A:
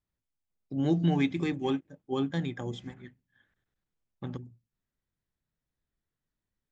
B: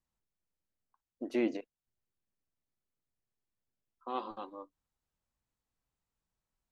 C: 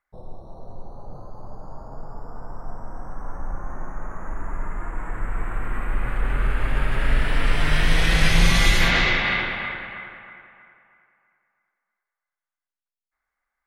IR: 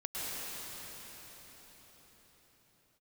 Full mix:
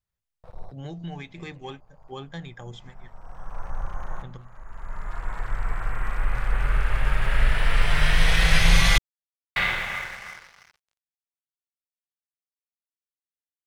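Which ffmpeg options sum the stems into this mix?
-filter_complex "[0:a]alimiter=limit=-22dB:level=0:latency=1:release=342,volume=0dB,asplit=2[link_01][link_02];[1:a]lowpass=5000,volume=-16.5dB[link_03];[2:a]aeval=exprs='sgn(val(0))*max(abs(val(0))-0.00841,0)':channel_layout=same,adelay=300,volume=0.5dB,asplit=3[link_04][link_05][link_06];[link_04]atrim=end=8.98,asetpts=PTS-STARTPTS,afade=type=out:start_time=8.976:duration=0.004:curve=hsin[link_07];[link_05]atrim=start=8.98:end=9.56,asetpts=PTS-STARTPTS,volume=0[link_08];[link_06]atrim=start=9.56,asetpts=PTS-STARTPTS,afade=type=in:duration=0.004:curve=hsin[link_09];[link_07][link_08][link_09]concat=n=3:v=0:a=1[link_10];[link_02]apad=whole_len=615960[link_11];[link_10][link_11]sidechaincompress=threshold=-47dB:ratio=12:attack=9.7:release=740[link_12];[link_01][link_03][link_12]amix=inputs=3:normalize=0,equalizer=frequency=280:width_type=o:width=0.83:gain=-14.5"

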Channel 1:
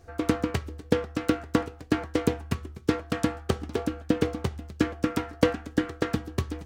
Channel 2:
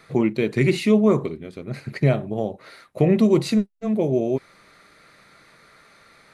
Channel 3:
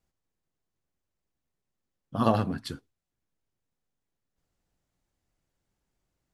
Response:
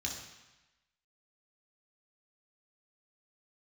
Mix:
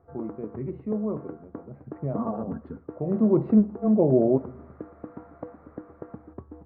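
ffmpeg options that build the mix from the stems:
-filter_complex "[0:a]acompressor=threshold=-30dB:ratio=6,volume=-4.5dB[link_01];[1:a]dynaudnorm=framelen=340:gausssize=5:maxgain=4dB,volume=-1dB,afade=type=in:start_time=3.04:duration=0.56:silence=0.223872,asplit=2[link_02][link_03];[link_03]volume=-15dB[link_04];[2:a]aecho=1:1:4.4:0.67,acompressor=threshold=-27dB:ratio=4,volume=0.5dB,asplit=2[link_05][link_06];[link_06]volume=-20.5dB[link_07];[3:a]atrim=start_sample=2205[link_08];[link_04][link_07]amix=inputs=2:normalize=0[link_09];[link_09][link_08]afir=irnorm=-1:irlink=0[link_10];[link_01][link_02][link_05][link_10]amix=inputs=4:normalize=0,lowpass=frequency=1100:width=0.5412,lowpass=frequency=1100:width=1.3066,lowshelf=frequency=68:gain=-11.5"

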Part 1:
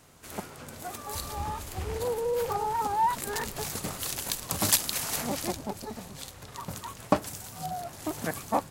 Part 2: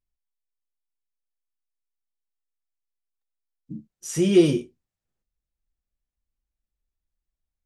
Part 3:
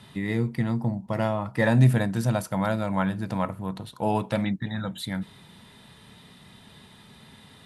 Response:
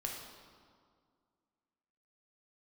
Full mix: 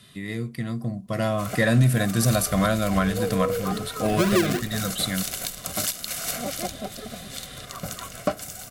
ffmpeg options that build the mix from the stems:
-filter_complex "[0:a]equalizer=frequency=94:width=1.2:gain=-8,aecho=1:1:1.4:0.44,adelay=1150,volume=-4.5dB[link_01];[1:a]acrusher=samples=38:mix=1:aa=0.000001:lfo=1:lforange=22.8:lforate=3.4,volume=-5.5dB[link_02];[2:a]acontrast=68,highshelf=frequency=3300:gain=11,volume=-11.5dB[link_03];[link_01][link_02][link_03]amix=inputs=3:normalize=0,asuperstop=centerf=880:order=12:qfactor=4.2,dynaudnorm=framelen=310:gausssize=9:maxgain=13.5dB,alimiter=limit=-10.5dB:level=0:latency=1:release=423"

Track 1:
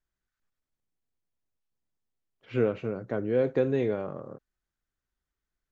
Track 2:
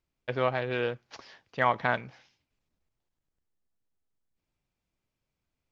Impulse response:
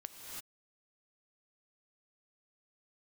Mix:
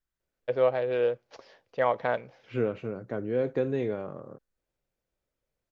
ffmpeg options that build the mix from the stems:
-filter_complex "[0:a]volume=-2.5dB[link_01];[1:a]equalizer=frequency=520:width=1.6:gain=14,adelay=200,volume=-6.5dB[link_02];[link_01][link_02]amix=inputs=2:normalize=0"

